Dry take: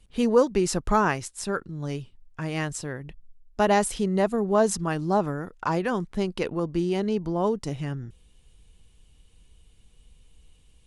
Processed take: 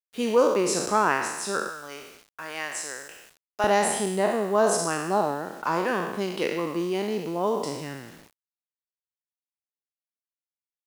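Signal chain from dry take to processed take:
peak hold with a decay on every bin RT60 1.03 s
high-pass filter 260 Hz 12 dB per octave, from 0:01.69 600 Hz, from 0:03.64 230 Hz
bit reduction 8 bits
level −1.5 dB

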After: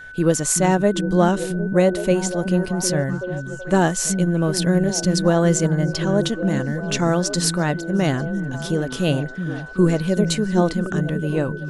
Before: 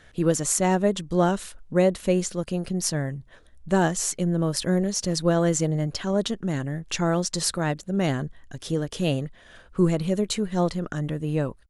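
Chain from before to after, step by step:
steady tone 1,500 Hz −40 dBFS
echo through a band-pass that steps 378 ms, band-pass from 190 Hz, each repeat 0.7 octaves, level −4 dB
level +4 dB

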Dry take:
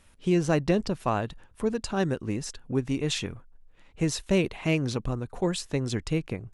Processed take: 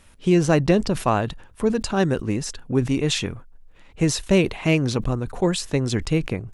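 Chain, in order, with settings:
level that may fall only so fast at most 140 dB per second
level +6 dB

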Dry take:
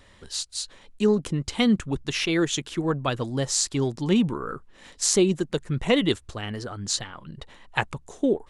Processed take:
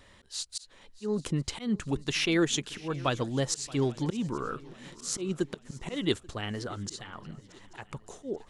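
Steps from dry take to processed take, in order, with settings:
low-shelf EQ 110 Hz −2.5 dB
volume swells 253 ms
feedback echo with a long and a short gap by turns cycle 836 ms, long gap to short 3 to 1, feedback 42%, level −21 dB
level −2 dB

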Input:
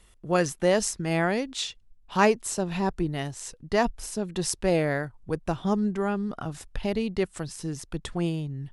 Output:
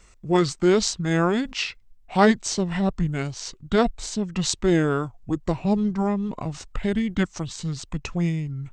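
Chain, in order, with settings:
formants moved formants −5 semitones
level +4 dB

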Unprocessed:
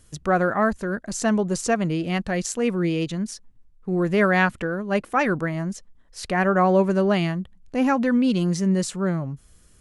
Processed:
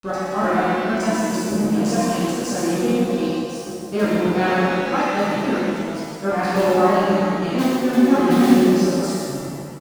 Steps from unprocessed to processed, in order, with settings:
slices reordered back to front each 109 ms, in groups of 3
thirty-one-band graphic EQ 250 Hz +9 dB, 2,000 Hz −11 dB, 5,000 Hz +7 dB
granular cloud 100 ms, grains 20 per second, spray 18 ms, pitch spread up and down by 0 semitones
in parallel at −11 dB: wrap-around overflow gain 9 dB
on the sum: high-pass filter 93 Hz 6 dB per octave
dead-zone distortion −36.5 dBFS
on a send: single-tap delay 121 ms −7.5 dB
on the sum: reverb with rising layers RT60 1.7 s, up +7 semitones, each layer −8 dB, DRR −10 dB
level −9 dB

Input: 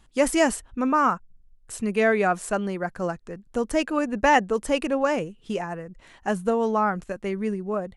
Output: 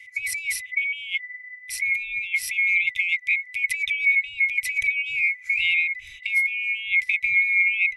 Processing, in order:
neighbouring bands swapped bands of 2,000 Hz
compressor whose output falls as the input rises −32 dBFS, ratio −1
drawn EQ curve 120 Hz 0 dB, 170 Hz −20 dB, 900 Hz −30 dB, 1,400 Hz −19 dB, 2,200 Hz +10 dB, 3,200 Hz −2 dB

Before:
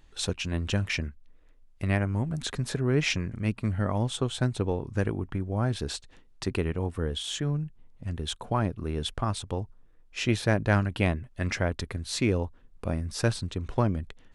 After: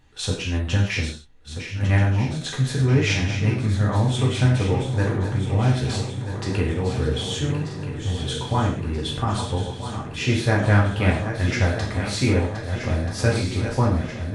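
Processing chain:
feedback delay that plays each chunk backwards 641 ms, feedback 76%, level −9 dB
high-shelf EQ 8,900 Hz −5 dB
reverb whose tail is shaped and stops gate 180 ms falling, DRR −3.5 dB

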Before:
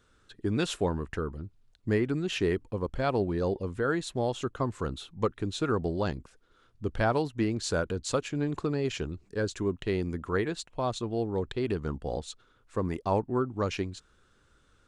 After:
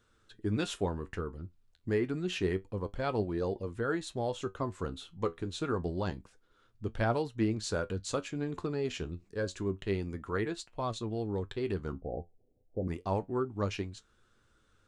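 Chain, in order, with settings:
0:11.92–0:12.88: Butterworth low-pass 780 Hz 96 dB per octave
flanger 0.28 Hz, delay 8.5 ms, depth 3.6 ms, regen +62%

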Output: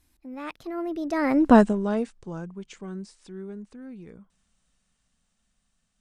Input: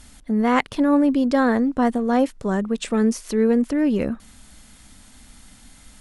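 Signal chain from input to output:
source passing by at 0:01.51, 55 m/s, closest 4.3 metres
level +6.5 dB

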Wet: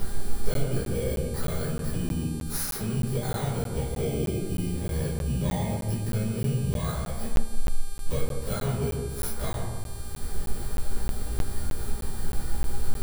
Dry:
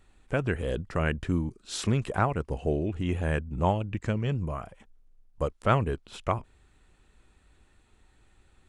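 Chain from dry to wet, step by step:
samples in bit-reversed order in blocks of 16 samples
in parallel at +1.5 dB: upward compression, threshold −28 dBFS
on the sum: brickwall limiter −12.5 dBFS, peak gain reduction 10 dB
downward compressor 20 to 1, threshold −34 dBFS, peak gain reduction 17.5 dB
time stretch by overlap-add 1.5×, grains 102 ms
wave folding −30.5 dBFS
hum with harmonics 400 Hz, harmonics 30, −55 dBFS 0 dB per octave
on a send: delay with a low-pass on its return 147 ms, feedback 45%, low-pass 1,600 Hz, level −3.5 dB
on the sum: rectangular room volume 38 cubic metres, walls mixed, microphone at 1.3 metres
regular buffer underruns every 0.31 s, samples 512, zero, from 0:00.54

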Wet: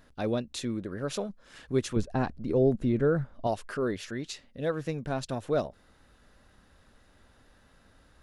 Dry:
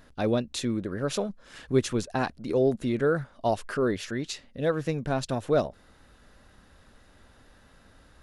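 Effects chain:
0:01.96–0:03.47: spectral tilt −2.5 dB per octave
level −4 dB

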